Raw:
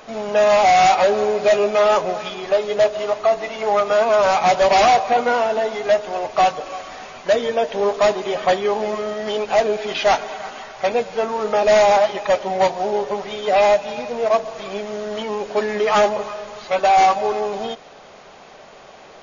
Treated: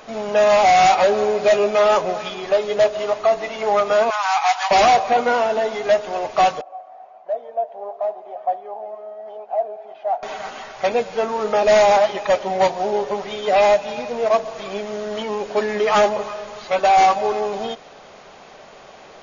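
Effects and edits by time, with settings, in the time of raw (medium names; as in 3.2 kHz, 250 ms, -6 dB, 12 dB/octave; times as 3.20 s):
4.10–4.71 s: steep high-pass 720 Hz 96 dB/octave
6.61–10.23 s: band-pass filter 710 Hz, Q 7.7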